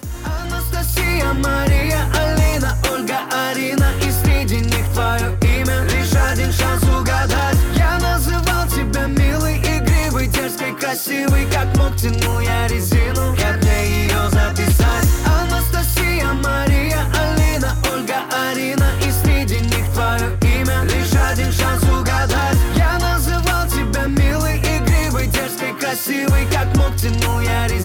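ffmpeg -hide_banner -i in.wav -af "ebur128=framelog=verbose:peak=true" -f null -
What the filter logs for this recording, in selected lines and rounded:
Integrated loudness:
  I:         -17.2 LUFS
  Threshold: -27.2 LUFS
Loudness range:
  LRA:         1.4 LU
  Threshold: -37.1 LUFS
  LRA low:   -17.7 LUFS
  LRA high:  -16.3 LUFS
True peak:
  Peak:       -6.5 dBFS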